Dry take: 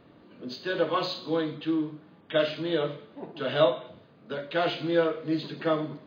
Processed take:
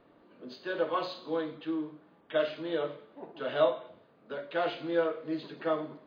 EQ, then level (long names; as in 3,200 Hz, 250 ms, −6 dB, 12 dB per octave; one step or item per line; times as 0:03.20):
parametric band 110 Hz −13 dB 2.8 octaves
high-shelf EQ 2,200 Hz −12 dB
0.0 dB